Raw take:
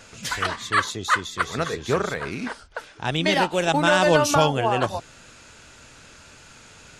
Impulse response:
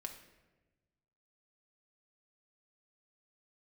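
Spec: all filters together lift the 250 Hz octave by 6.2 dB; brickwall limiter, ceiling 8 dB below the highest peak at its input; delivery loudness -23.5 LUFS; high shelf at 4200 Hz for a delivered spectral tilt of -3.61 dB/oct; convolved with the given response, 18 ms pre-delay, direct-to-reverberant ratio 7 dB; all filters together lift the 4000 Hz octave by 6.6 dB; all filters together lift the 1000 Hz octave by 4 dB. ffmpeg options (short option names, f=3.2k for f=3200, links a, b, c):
-filter_complex "[0:a]equalizer=f=250:t=o:g=8.5,equalizer=f=1k:t=o:g=4,equalizer=f=4k:t=o:g=6,highshelf=f=4.2k:g=4,alimiter=limit=-8.5dB:level=0:latency=1,asplit=2[a][b];[1:a]atrim=start_sample=2205,adelay=18[c];[b][c]afir=irnorm=-1:irlink=0,volume=-4dB[d];[a][d]amix=inputs=2:normalize=0,volume=-3dB"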